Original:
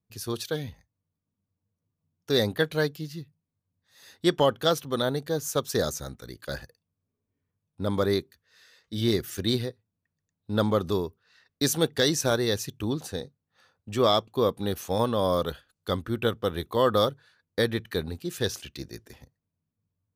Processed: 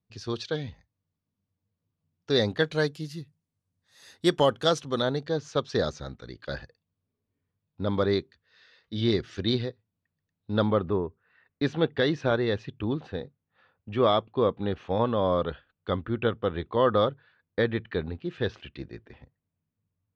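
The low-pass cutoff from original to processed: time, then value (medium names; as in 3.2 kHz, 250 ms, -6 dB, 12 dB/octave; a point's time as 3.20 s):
low-pass 24 dB/octave
2.35 s 5.2 kHz
3.09 s 11 kHz
4.36 s 11 kHz
5.43 s 4.5 kHz
10.57 s 4.5 kHz
10.99 s 1.9 kHz
11.71 s 3.1 kHz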